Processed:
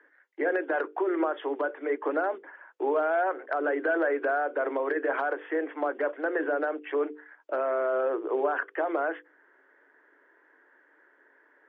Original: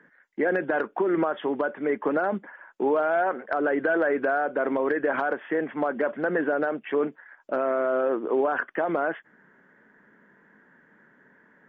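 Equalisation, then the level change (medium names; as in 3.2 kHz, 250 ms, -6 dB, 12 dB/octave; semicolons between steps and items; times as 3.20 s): steep high-pass 290 Hz 72 dB/octave; distance through air 72 m; hum notches 50/100/150/200/250/300/350/400/450/500 Hz; -2.0 dB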